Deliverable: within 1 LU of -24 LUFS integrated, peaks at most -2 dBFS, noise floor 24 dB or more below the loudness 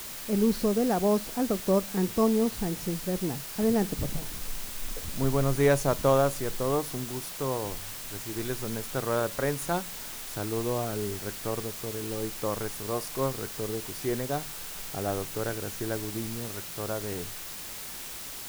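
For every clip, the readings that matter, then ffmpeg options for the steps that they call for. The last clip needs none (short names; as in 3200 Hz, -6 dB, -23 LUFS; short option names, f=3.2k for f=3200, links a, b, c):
noise floor -40 dBFS; noise floor target -54 dBFS; loudness -30.0 LUFS; peak -11.5 dBFS; loudness target -24.0 LUFS
-> -af "afftdn=nr=14:nf=-40"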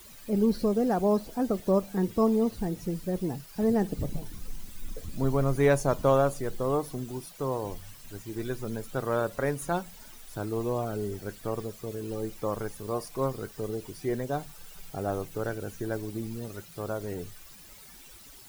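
noise floor -50 dBFS; noise floor target -54 dBFS
-> -af "afftdn=nr=6:nf=-50"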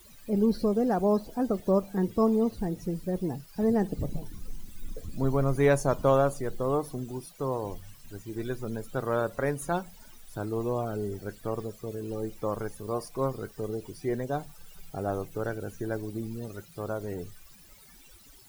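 noise floor -53 dBFS; noise floor target -54 dBFS
-> -af "afftdn=nr=6:nf=-53"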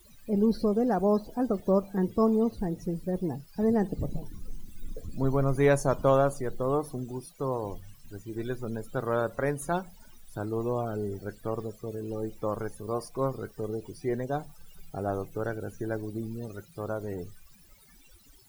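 noise floor -56 dBFS; loudness -30.0 LUFS; peak -12.0 dBFS; loudness target -24.0 LUFS
-> -af "volume=6dB"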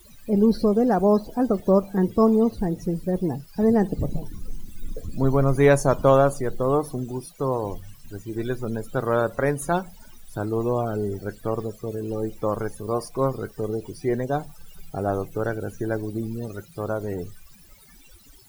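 loudness -24.0 LUFS; peak -6.0 dBFS; noise floor -50 dBFS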